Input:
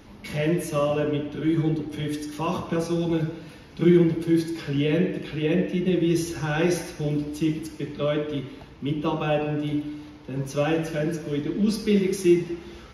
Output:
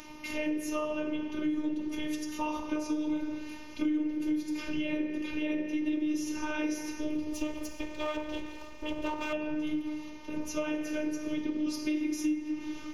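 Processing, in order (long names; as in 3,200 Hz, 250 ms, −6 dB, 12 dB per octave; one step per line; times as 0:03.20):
0:07.33–0:09.33: lower of the sound and its delayed copy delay 2.1 ms
EQ curve with evenly spaced ripples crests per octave 0.76, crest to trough 7 dB
phases set to zero 305 Hz
bucket-brigade delay 191 ms, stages 2,048, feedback 64%, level −17.5 dB
downward compressor 6 to 1, threshold −28 dBFS, peak gain reduction 14.5 dB
one half of a high-frequency compander encoder only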